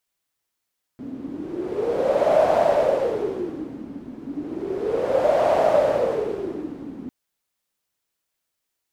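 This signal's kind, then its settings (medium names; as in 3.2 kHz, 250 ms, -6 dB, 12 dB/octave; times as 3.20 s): wind-like swept noise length 6.10 s, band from 260 Hz, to 640 Hz, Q 8.4, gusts 2, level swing 17 dB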